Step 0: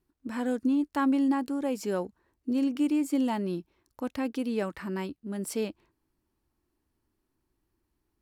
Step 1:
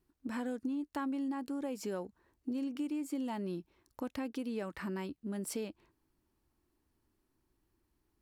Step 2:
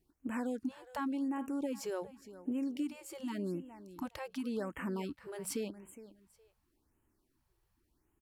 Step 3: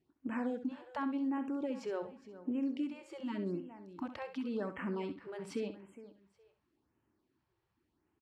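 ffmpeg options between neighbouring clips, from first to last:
ffmpeg -i in.wav -af "acompressor=threshold=-36dB:ratio=4" out.wav
ffmpeg -i in.wav -af "aecho=1:1:414|828:0.168|0.0386,afftfilt=real='re*(1-between(b*sr/1024,220*pow(4700/220,0.5+0.5*sin(2*PI*0.89*pts/sr))/1.41,220*pow(4700/220,0.5+0.5*sin(2*PI*0.89*pts/sr))*1.41))':imag='im*(1-between(b*sr/1024,220*pow(4700/220,0.5+0.5*sin(2*PI*0.89*pts/sr))/1.41,220*pow(4700/220,0.5+0.5*sin(2*PI*0.89*pts/sr))*1.41))':win_size=1024:overlap=0.75,volume=1dB" out.wav
ffmpeg -i in.wav -filter_complex "[0:a]highpass=100,lowpass=3500,asplit=2[link_01][link_02];[link_02]aecho=0:1:66|132:0.299|0.0478[link_03];[link_01][link_03]amix=inputs=2:normalize=0" out.wav

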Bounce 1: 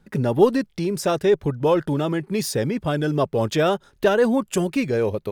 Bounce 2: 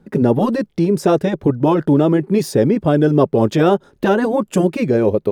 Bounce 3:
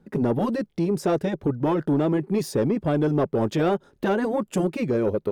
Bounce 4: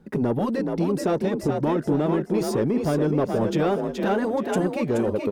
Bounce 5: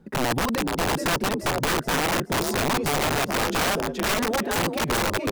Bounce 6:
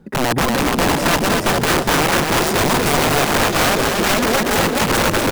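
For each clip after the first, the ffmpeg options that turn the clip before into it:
ffmpeg -i in.wav -af "afftfilt=real='re*lt(hypot(re,im),0.891)':imag='im*lt(hypot(re,im),0.891)':win_size=1024:overlap=0.75,equalizer=frequency=320:width=0.36:gain=13.5,volume=-2dB" out.wav
ffmpeg -i in.wav -af "asoftclip=type=tanh:threshold=-7.5dB,volume=-6.5dB" out.wav
ffmpeg -i in.wav -filter_complex "[0:a]asplit=6[link_01][link_02][link_03][link_04][link_05][link_06];[link_02]adelay=425,afreqshift=44,volume=-5.5dB[link_07];[link_03]adelay=850,afreqshift=88,volume=-13.7dB[link_08];[link_04]adelay=1275,afreqshift=132,volume=-21.9dB[link_09];[link_05]adelay=1700,afreqshift=176,volume=-30dB[link_10];[link_06]adelay=2125,afreqshift=220,volume=-38.2dB[link_11];[link_01][link_07][link_08][link_09][link_10][link_11]amix=inputs=6:normalize=0,asplit=2[link_12][link_13];[link_13]acompressor=threshold=-31dB:ratio=6,volume=2.5dB[link_14];[link_12][link_14]amix=inputs=2:normalize=0,volume=-3.5dB" out.wav
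ffmpeg -i in.wav -af "aeval=exprs='(mod(8.41*val(0)+1,2)-1)/8.41':channel_layout=same" out.wav
ffmpeg -i in.wav -af "aecho=1:1:240|420|555|656.2|732.2:0.631|0.398|0.251|0.158|0.1,volume=6dB" out.wav

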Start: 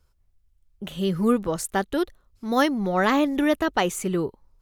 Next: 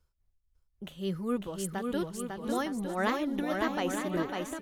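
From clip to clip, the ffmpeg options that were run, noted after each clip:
ffmpeg -i in.wav -af "tremolo=f=3.6:d=0.55,aecho=1:1:550|907.5|1140|1291|1389:0.631|0.398|0.251|0.158|0.1,volume=-7.5dB" out.wav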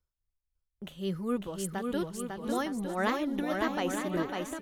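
ffmpeg -i in.wav -af "agate=range=-11dB:threshold=-60dB:ratio=16:detection=peak" out.wav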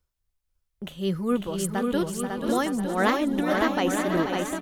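ffmpeg -i in.wav -af "aecho=1:1:484:0.376,volume=6.5dB" out.wav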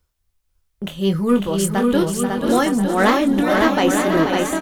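ffmpeg -i in.wav -filter_complex "[0:a]asplit=2[link_01][link_02];[link_02]asoftclip=type=hard:threshold=-22.5dB,volume=-3.5dB[link_03];[link_01][link_03]amix=inputs=2:normalize=0,asplit=2[link_04][link_05];[link_05]adelay=25,volume=-8.5dB[link_06];[link_04][link_06]amix=inputs=2:normalize=0,volume=3.5dB" out.wav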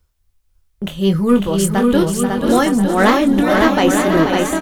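ffmpeg -i in.wav -af "lowshelf=frequency=110:gain=6,volume=2.5dB" out.wav

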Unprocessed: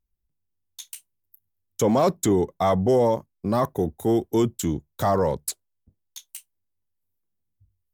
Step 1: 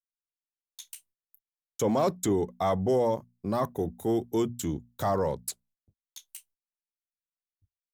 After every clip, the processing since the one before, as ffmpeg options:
ffmpeg -i in.wav -af "bandreject=frequency=60:width_type=h:width=6,bandreject=frequency=120:width_type=h:width=6,bandreject=frequency=180:width_type=h:width=6,bandreject=frequency=240:width_type=h:width=6,agate=range=-32dB:threshold=-57dB:ratio=16:detection=peak,volume=-5.5dB" out.wav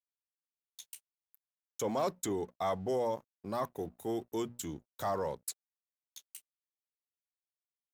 ffmpeg -i in.wav -af "lowshelf=frequency=370:gain=-8.5,aeval=exprs='sgn(val(0))*max(abs(val(0))-0.00112,0)':channel_layout=same,volume=-4dB" out.wav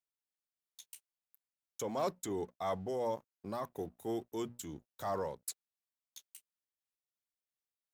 ffmpeg -i in.wav -af "tremolo=f=2.9:d=0.36,volume=-1.5dB" out.wav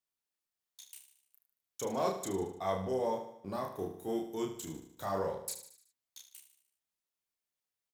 ffmpeg -i in.wav -filter_complex "[0:a]asplit=2[link_01][link_02];[link_02]adelay=31,volume=-2.5dB[link_03];[link_01][link_03]amix=inputs=2:normalize=0,asplit=2[link_04][link_05];[link_05]aecho=0:1:75|150|225|300|375:0.316|0.158|0.0791|0.0395|0.0198[link_06];[link_04][link_06]amix=inputs=2:normalize=0" out.wav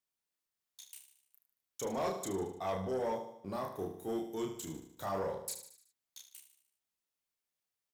ffmpeg -i in.wav -af "asoftclip=type=tanh:threshold=-28dB" out.wav

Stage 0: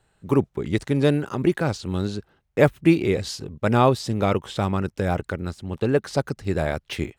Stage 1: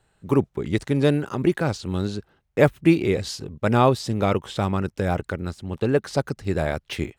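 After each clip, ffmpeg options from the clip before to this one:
ffmpeg -i in.wav -af anull out.wav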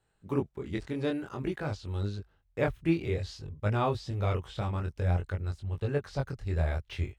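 ffmpeg -i in.wav -filter_complex "[0:a]asubboost=boost=8.5:cutoff=79,acrossover=split=5600[link_01][link_02];[link_02]acompressor=threshold=-52dB:ratio=4:attack=1:release=60[link_03];[link_01][link_03]amix=inputs=2:normalize=0,flanger=delay=19.5:depth=4.9:speed=0.53,volume=-7dB" out.wav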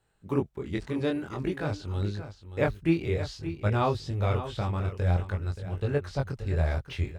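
ffmpeg -i in.wav -af "aecho=1:1:577:0.266,volume=2.5dB" out.wav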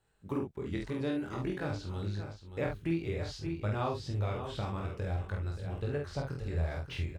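ffmpeg -i in.wav -filter_complex "[0:a]acompressor=threshold=-30dB:ratio=2.5,asplit=2[link_01][link_02];[link_02]adelay=48,volume=-4dB[link_03];[link_01][link_03]amix=inputs=2:normalize=0,volume=-3dB" out.wav

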